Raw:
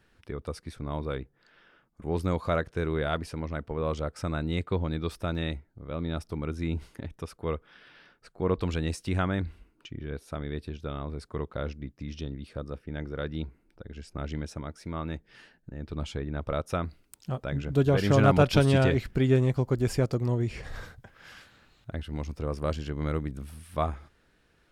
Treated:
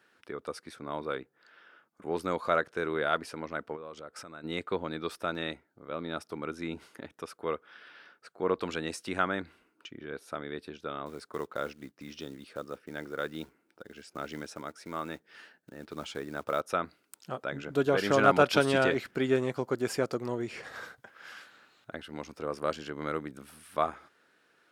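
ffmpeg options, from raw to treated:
ffmpeg -i in.wav -filter_complex "[0:a]asplit=3[link_01][link_02][link_03];[link_01]afade=type=out:start_time=3.75:duration=0.02[link_04];[link_02]acompressor=threshold=-39dB:ratio=5:attack=3.2:release=140:knee=1:detection=peak,afade=type=in:start_time=3.75:duration=0.02,afade=type=out:start_time=4.43:duration=0.02[link_05];[link_03]afade=type=in:start_time=4.43:duration=0.02[link_06];[link_04][link_05][link_06]amix=inputs=3:normalize=0,asettb=1/sr,asplit=3[link_07][link_08][link_09];[link_07]atrim=end=11.064[link_10];[link_08]atrim=start=11.06:end=16.61,asetpts=PTS-STARTPTS,afade=type=in:duration=0.004:curve=qsin,afade=type=out:start_time=5.546:duration=0.004:curve=qsin,acrusher=bits=7:mode=log:mix=0:aa=0.000001[link_11];[link_09]atrim=start=16.606[link_12];[link_10][link_11]acrossfade=duration=0.004:curve1=hsin:curve2=qsin[link_13];[link_13][link_12]acrossfade=duration=0.004:curve1=qsin:curve2=hsin,highpass=300,equalizer=frequency=1400:width=2.7:gain=5" out.wav

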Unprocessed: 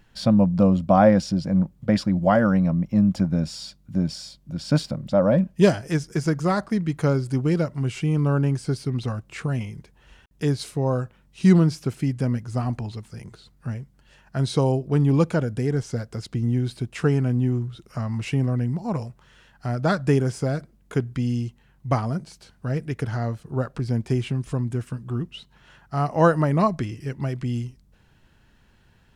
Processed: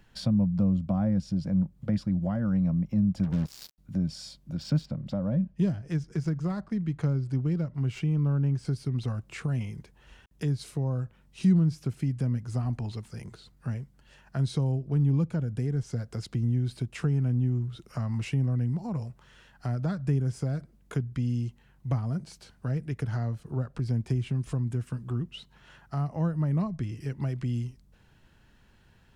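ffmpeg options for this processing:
ffmpeg -i in.wav -filter_complex "[0:a]asettb=1/sr,asplit=3[link_01][link_02][link_03];[link_01]atrim=end=3.234[link_04];[link_02]atrim=start=3.23:end=3.78,asetpts=PTS-STARTPTS,afade=type=in:duration=0.004:curve=qsin,afade=type=out:start_time=0.546:duration=0.004:curve=qsin,acrusher=bits=4:mix=0:aa=0.5[link_05];[link_03]atrim=start=3.776[link_06];[link_04][link_05]acrossfade=duration=0.004:curve1=hsin:curve2=qsin[link_07];[link_07][link_06]acrossfade=duration=0.004:curve1=qsin:curve2=hsin,asettb=1/sr,asplit=3[link_08][link_09][link_10];[link_08]atrim=end=4.574[link_11];[link_09]atrim=start=4.57:end=8.65,asetpts=PTS-STARTPTS,afade=type=in:duration=0.004:curve=qsin,afade=type=out:start_time=4.076:duration=0.004:curve=qsin,adynamicsmooth=sensitivity=6.5:basefreq=5500[link_12];[link_10]atrim=start=8.646[link_13];[link_11][link_12]acrossfade=duration=0.004:curve1=hsin:curve2=qsin[link_14];[link_14][link_13]acrossfade=duration=0.004:curve1=qsin:curve2=hsin,acrossover=split=200[link_15][link_16];[link_16]acompressor=threshold=-35dB:ratio=6[link_17];[link_15][link_17]amix=inputs=2:normalize=0,volume=-2dB" out.wav

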